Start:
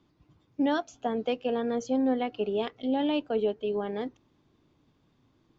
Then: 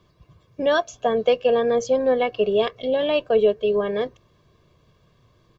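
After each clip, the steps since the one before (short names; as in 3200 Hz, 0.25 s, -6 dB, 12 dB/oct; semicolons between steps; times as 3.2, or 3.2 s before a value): comb 1.8 ms, depth 77%; gain +7.5 dB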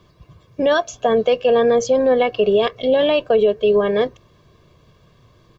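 limiter -14.5 dBFS, peak gain reduction 6 dB; gain +6.5 dB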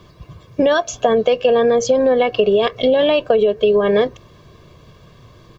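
compressor, threshold -19 dBFS, peak gain reduction 8 dB; gain +7.5 dB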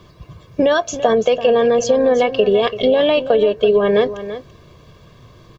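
echo 0.336 s -12.5 dB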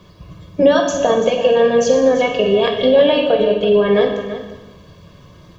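reverb RT60 1.1 s, pre-delay 3 ms, DRR 1 dB; gain -1.5 dB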